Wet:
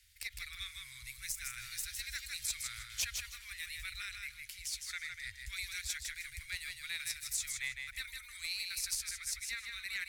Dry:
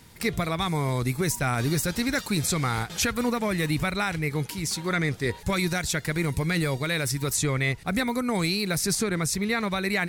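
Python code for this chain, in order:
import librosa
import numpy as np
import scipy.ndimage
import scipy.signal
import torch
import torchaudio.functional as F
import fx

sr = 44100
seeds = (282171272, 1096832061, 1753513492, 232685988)

y = scipy.signal.sosfilt(scipy.signal.cheby2(4, 50, [160.0, 840.0], 'bandstop', fs=sr, output='sos'), x)
y = fx.cheby_harmonics(y, sr, harmonics=(3,), levels_db=(-16,), full_scale_db=-13.5)
y = fx.echo_feedback(y, sr, ms=158, feedback_pct=22, wet_db=-5.0)
y = fx.end_taper(y, sr, db_per_s=560.0)
y = F.gain(torch.from_numpy(y), -5.5).numpy()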